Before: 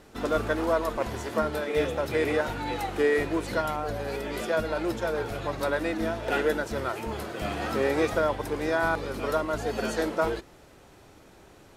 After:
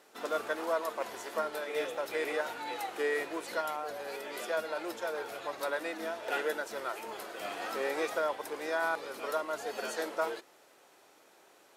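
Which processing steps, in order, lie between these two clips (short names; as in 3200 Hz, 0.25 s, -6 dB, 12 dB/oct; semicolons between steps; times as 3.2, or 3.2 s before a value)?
HPF 470 Hz 12 dB/oct; high shelf 9600 Hz +5.5 dB; gain -5 dB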